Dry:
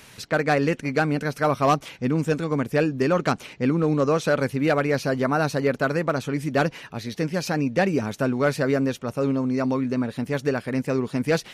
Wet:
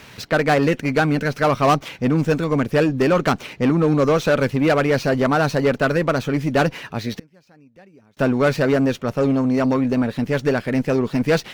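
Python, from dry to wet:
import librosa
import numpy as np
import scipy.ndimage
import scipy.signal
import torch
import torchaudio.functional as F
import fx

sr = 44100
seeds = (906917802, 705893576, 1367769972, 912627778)

y = scipy.ndimage.median_filter(x, 5, mode='constant')
y = fx.gate_flip(y, sr, shuts_db=-24.0, range_db=-33, at=(7.17, 8.17))
y = fx.cheby_harmonics(y, sr, harmonics=(5, 6), levels_db=(-22, -24), full_scale_db=-11.0)
y = F.gain(torch.from_numpy(y), 3.5).numpy()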